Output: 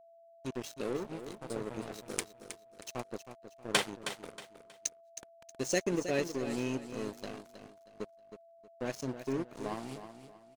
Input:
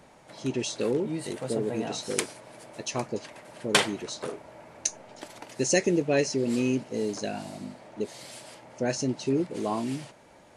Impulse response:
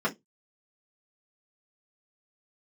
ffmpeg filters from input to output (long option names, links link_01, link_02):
-af "aeval=exprs='sgn(val(0))*max(abs(val(0))-0.0237,0)':channel_layout=same,aecho=1:1:317|634|951:0.299|0.0925|0.0287,aeval=exprs='val(0)+0.00282*sin(2*PI*670*n/s)':channel_layout=same,volume=-5.5dB"